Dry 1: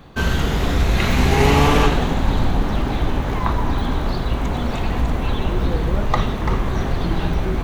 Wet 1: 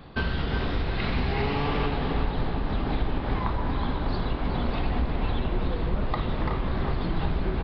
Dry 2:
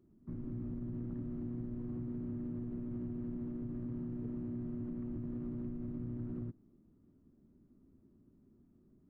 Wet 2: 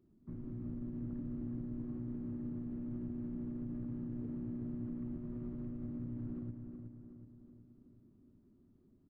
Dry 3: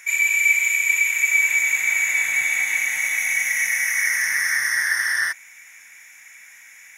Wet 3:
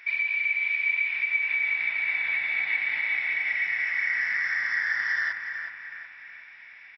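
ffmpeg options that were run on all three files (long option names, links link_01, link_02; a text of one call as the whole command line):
ffmpeg -i in.wav -filter_complex "[0:a]acompressor=threshold=-21dB:ratio=6,asplit=2[link_01][link_02];[link_02]adelay=370,lowpass=frequency=2800:poles=1,volume=-6dB,asplit=2[link_03][link_04];[link_04]adelay=370,lowpass=frequency=2800:poles=1,volume=0.53,asplit=2[link_05][link_06];[link_06]adelay=370,lowpass=frequency=2800:poles=1,volume=0.53,asplit=2[link_07][link_08];[link_08]adelay=370,lowpass=frequency=2800:poles=1,volume=0.53,asplit=2[link_09][link_10];[link_10]adelay=370,lowpass=frequency=2800:poles=1,volume=0.53,asplit=2[link_11][link_12];[link_12]adelay=370,lowpass=frequency=2800:poles=1,volume=0.53,asplit=2[link_13][link_14];[link_14]adelay=370,lowpass=frequency=2800:poles=1,volume=0.53[link_15];[link_01][link_03][link_05][link_07][link_09][link_11][link_13][link_15]amix=inputs=8:normalize=0,aresample=11025,aresample=44100,volume=-2.5dB" out.wav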